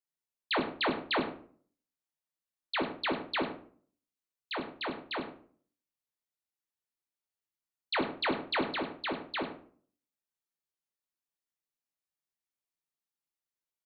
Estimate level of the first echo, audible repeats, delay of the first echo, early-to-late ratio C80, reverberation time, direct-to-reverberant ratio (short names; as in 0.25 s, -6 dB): -14.0 dB, 1, 99 ms, 11.0 dB, 0.50 s, 1.5 dB